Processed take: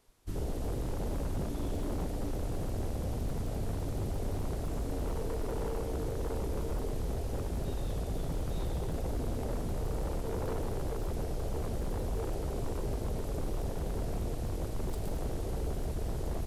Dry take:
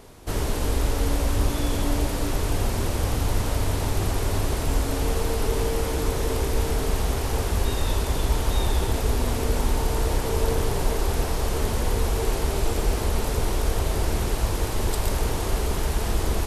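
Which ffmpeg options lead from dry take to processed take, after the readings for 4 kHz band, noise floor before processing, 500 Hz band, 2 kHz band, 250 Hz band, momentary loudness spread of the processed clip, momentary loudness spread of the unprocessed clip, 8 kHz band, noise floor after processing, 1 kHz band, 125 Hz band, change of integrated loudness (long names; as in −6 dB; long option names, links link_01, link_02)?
−18.5 dB, −27 dBFS, −9.5 dB, −17.5 dB, −8.5 dB, 1 LU, 2 LU, −17.5 dB, −36 dBFS, −13.0 dB, −9.5 dB, −11.0 dB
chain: -filter_complex "[0:a]afwtdn=0.0631,equalizer=frequency=2100:width_type=o:width=1.8:gain=-2.5,acrossover=split=1100[link_01][link_02];[link_02]acontrast=82[link_03];[link_01][link_03]amix=inputs=2:normalize=0,aeval=exprs='0.0944*(abs(mod(val(0)/0.0944+3,4)-2)-1)':channel_layout=same,volume=-7.5dB"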